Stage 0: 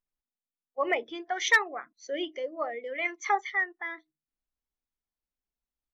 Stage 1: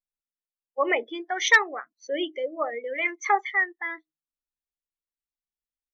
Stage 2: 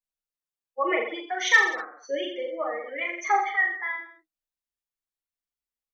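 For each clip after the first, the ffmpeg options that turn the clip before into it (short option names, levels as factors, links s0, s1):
-af "afftdn=nr=15:nf=-42,bandreject=f=700:w=12,volume=1.68"
-filter_complex "[0:a]asplit=2[s0][s1];[s1]aecho=0:1:40|84|132.4|185.6|244.2:0.631|0.398|0.251|0.158|0.1[s2];[s0][s2]amix=inputs=2:normalize=0,asplit=2[s3][s4];[s4]adelay=5.7,afreqshift=-1.2[s5];[s3][s5]amix=inputs=2:normalize=1"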